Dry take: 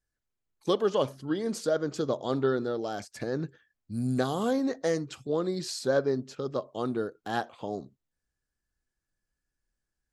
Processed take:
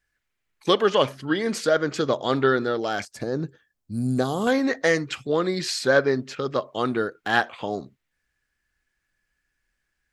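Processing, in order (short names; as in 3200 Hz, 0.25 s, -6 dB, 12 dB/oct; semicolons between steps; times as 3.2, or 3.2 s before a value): bell 2100 Hz +13 dB 1.5 oct, from 3.05 s -4 dB, from 4.47 s +13.5 dB; gain +4.5 dB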